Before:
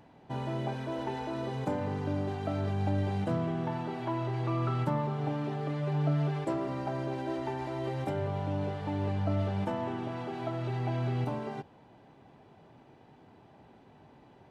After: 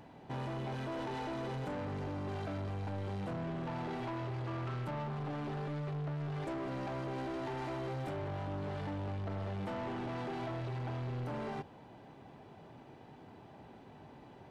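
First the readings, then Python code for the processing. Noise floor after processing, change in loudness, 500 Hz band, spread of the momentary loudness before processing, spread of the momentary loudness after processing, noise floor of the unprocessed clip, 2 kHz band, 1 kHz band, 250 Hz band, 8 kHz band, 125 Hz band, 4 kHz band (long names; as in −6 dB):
−55 dBFS, −6.5 dB, −6.0 dB, 5 LU, 16 LU, −58 dBFS, −2.5 dB, −5.0 dB, −6.5 dB, can't be measured, −7.0 dB, −3.5 dB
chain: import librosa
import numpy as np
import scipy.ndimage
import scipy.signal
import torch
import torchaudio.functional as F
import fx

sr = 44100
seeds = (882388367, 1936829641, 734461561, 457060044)

p1 = fx.over_compress(x, sr, threshold_db=-36.0, ratio=-1.0)
p2 = x + F.gain(torch.from_numpy(p1), -2.0).numpy()
p3 = 10.0 ** (-32.0 / 20.0) * np.tanh(p2 / 10.0 ** (-32.0 / 20.0))
y = F.gain(torch.from_numpy(p3), -4.0).numpy()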